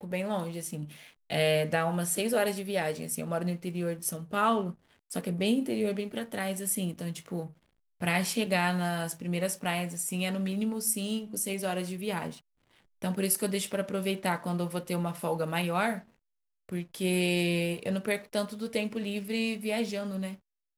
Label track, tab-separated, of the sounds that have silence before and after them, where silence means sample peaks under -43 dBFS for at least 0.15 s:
1.300000	4.720000	sound
5.110000	7.500000	sound
8.010000	12.380000	sound
13.020000	16.010000	sound
16.690000	20.350000	sound